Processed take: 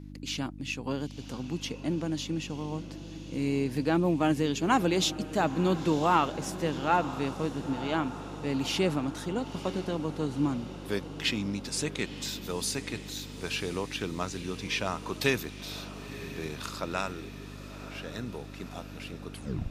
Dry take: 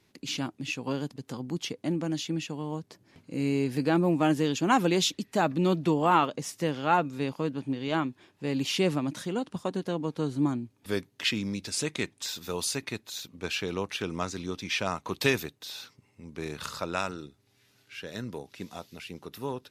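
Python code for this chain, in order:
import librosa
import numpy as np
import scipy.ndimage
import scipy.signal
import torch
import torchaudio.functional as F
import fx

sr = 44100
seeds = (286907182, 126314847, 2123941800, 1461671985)

y = fx.tape_stop_end(x, sr, length_s=0.42)
y = fx.echo_diffused(y, sr, ms=977, feedback_pct=62, wet_db=-13.5)
y = fx.dmg_buzz(y, sr, base_hz=50.0, harmonics=6, level_db=-43.0, tilt_db=-2, odd_only=False)
y = y * 10.0 ** (-1.5 / 20.0)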